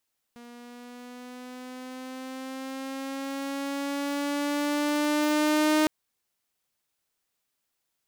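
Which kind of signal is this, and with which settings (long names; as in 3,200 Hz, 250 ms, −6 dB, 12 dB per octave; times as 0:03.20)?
pitch glide with a swell saw, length 5.51 s, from 238 Hz, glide +4.5 semitones, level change +25 dB, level −17 dB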